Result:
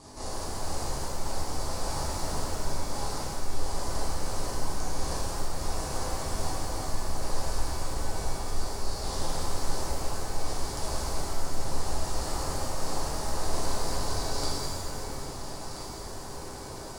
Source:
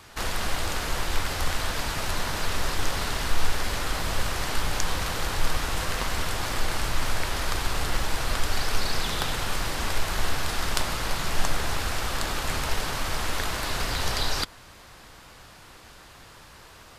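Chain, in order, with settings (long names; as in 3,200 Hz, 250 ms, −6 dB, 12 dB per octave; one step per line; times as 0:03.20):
Butterworth low-pass 11,000 Hz 96 dB per octave
flat-topped bell 2,200 Hz −14.5 dB
reversed playback
downward compressor 10 to 1, threshold −35 dBFS, peak gain reduction 21 dB
reversed playback
hum with harmonics 50 Hz, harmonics 8, −58 dBFS 0 dB per octave
on a send: delay that swaps between a low-pass and a high-pass 665 ms, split 1,100 Hz, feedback 57%, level −6.5 dB
on the sum: reverb with rising layers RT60 2.1 s, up +7 semitones, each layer −8 dB, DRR −9 dB
level −1 dB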